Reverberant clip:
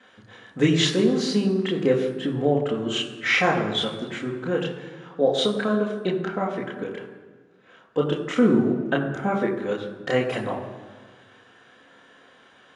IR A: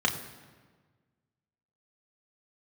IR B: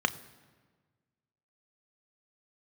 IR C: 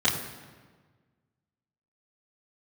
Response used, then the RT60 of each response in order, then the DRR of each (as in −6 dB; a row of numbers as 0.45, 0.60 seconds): C; 1.5, 1.5, 1.5 seconds; 0.5, 10.0, −9.0 decibels